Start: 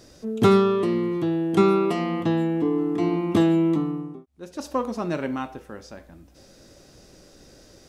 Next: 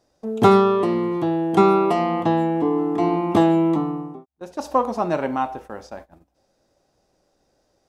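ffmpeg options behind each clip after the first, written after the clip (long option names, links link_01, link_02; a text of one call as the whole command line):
ffmpeg -i in.wav -af "agate=range=-19dB:threshold=-44dB:ratio=16:detection=peak,equalizer=frequency=800:width=1.3:gain=12" out.wav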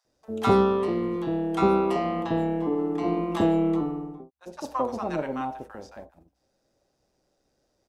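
ffmpeg -i in.wav -filter_complex "[0:a]tremolo=f=130:d=0.462,acrossover=split=870[link_01][link_02];[link_01]adelay=50[link_03];[link_03][link_02]amix=inputs=2:normalize=0,volume=-3dB" out.wav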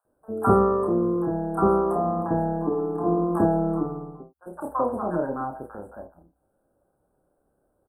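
ffmpeg -i in.wav -filter_complex "[0:a]asuperstop=centerf=3800:order=20:qfactor=0.56,asplit=2[link_01][link_02];[link_02]adelay=29,volume=-5.5dB[link_03];[link_01][link_03]amix=inputs=2:normalize=0,volume=1.5dB" out.wav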